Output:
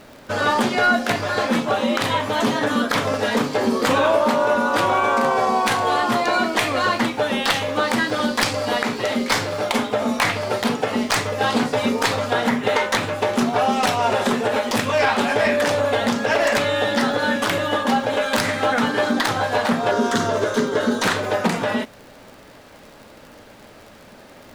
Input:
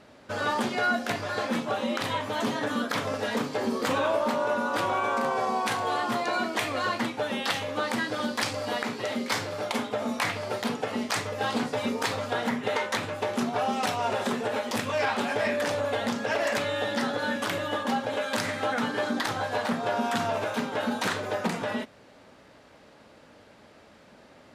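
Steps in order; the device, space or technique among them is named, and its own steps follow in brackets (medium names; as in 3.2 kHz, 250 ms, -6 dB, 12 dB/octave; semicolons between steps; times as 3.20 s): record under a worn stylus (tracing distortion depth 0.027 ms; crackle 59 per s -43 dBFS; pink noise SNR 35 dB); 19.91–21.03 s: graphic EQ with 31 bands 400 Hz +10 dB, 800 Hz -11 dB, 2.5 kHz -11 dB, 6.3 kHz +5 dB, 12.5 kHz -6 dB; trim +8.5 dB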